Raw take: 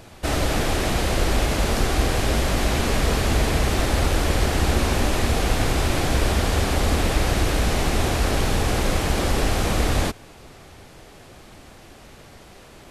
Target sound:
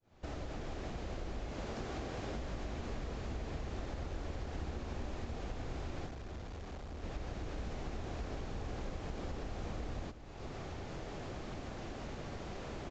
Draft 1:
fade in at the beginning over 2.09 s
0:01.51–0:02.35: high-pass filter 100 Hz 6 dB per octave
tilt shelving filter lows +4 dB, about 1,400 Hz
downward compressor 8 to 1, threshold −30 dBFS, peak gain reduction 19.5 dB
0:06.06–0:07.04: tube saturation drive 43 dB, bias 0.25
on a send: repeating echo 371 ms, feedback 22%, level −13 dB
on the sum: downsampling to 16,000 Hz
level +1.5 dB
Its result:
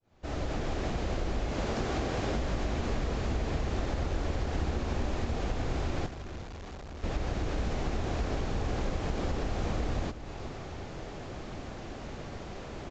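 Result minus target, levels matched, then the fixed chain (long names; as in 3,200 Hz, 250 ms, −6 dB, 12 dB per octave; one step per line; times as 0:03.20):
downward compressor: peak gain reduction −9.5 dB
fade in at the beginning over 2.09 s
0:01.51–0:02.35: high-pass filter 100 Hz 6 dB per octave
tilt shelving filter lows +4 dB, about 1,400 Hz
downward compressor 8 to 1, threshold −41 dBFS, peak gain reduction 29 dB
0:06.06–0:07.04: tube saturation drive 43 dB, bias 0.25
on a send: repeating echo 371 ms, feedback 22%, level −13 dB
on the sum: downsampling to 16,000 Hz
level +1.5 dB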